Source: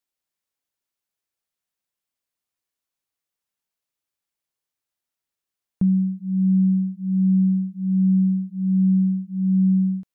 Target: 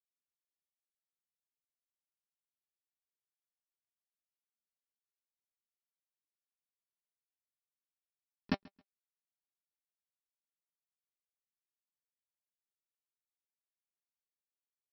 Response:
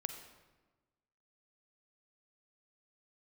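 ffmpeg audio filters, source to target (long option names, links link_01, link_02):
-filter_complex "[0:a]acompressor=threshold=-26dB:ratio=10,asuperpass=centerf=300:order=4:qfactor=4.2,asetrate=39289,aresample=44100,atempo=1.12246,aresample=11025,acrusher=bits=6:mix=0:aa=0.000001,aresample=44100,atempo=0.68,flanger=delay=4.6:depth=4:regen=52:speed=0.24:shape=triangular,asplit=2[link_01][link_02];[link_02]aecho=0:1:135|270:0.0631|0.0151[link_03];[link_01][link_03]amix=inputs=2:normalize=0,volume=16.5dB"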